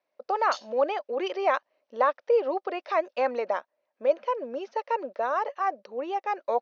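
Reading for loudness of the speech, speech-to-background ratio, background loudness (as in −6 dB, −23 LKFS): −28.5 LKFS, 13.5 dB, −42.0 LKFS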